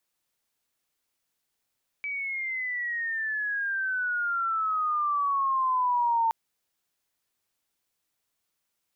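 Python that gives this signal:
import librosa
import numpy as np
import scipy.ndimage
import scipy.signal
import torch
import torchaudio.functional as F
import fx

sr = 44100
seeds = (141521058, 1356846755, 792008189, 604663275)

y = fx.chirp(sr, length_s=4.27, from_hz=2300.0, to_hz=900.0, law='logarithmic', from_db=-29.5, to_db=-21.0)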